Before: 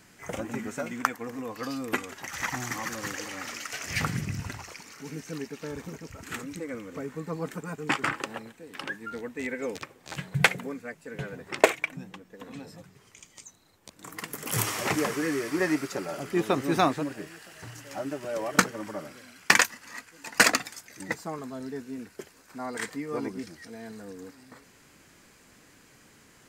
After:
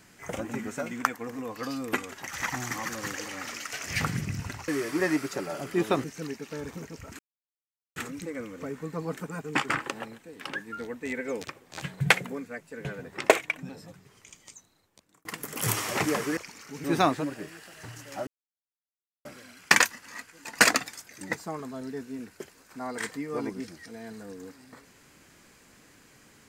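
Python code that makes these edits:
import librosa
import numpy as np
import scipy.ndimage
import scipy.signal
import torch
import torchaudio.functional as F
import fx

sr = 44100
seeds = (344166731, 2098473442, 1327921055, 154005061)

y = fx.edit(x, sr, fx.swap(start_s=4.68, length_s=0.47, other_s=15.27, other_length_s=1.36),
    fx.insert_silence(at_s=6.3, length_s=0.77),
    fx.cut(start_s=12.03, length_s=0.56),
    fx.fade_out_span(start_s=13.3, length_s=0.85),
    fx.silence(start_s=18.06, length_s=0.98), tone=tone)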